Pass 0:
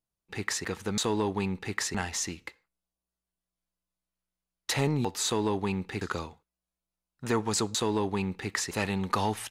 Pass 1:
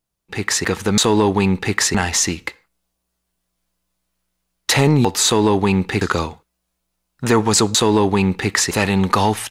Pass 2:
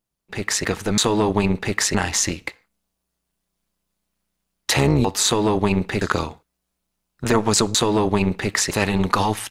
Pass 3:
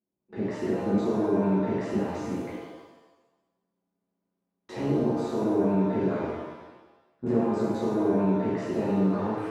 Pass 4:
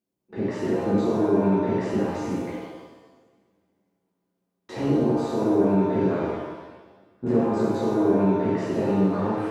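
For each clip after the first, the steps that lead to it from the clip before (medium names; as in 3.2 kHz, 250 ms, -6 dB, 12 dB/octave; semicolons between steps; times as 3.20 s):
in parallel at +1 dB: peak limiter -21.5 dBFS, peak gain reduction 9 dB; on the sum: level rider gain up to 6 dB; trim +3 dB
AM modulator 210 Hz, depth 55%
compression, threshold -22 dBFS, peak gain reduction 10 dB; band-pass filter 300 Hz, Q 1.7; pitch-shifted reverb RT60 1.1 s, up +7 st, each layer -8 dB, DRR -9.5 dB; trim -4 dB
two-slope reverb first 0.63 s, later 3 s, from -20 dB, DRR 8 dB; trim +3 dB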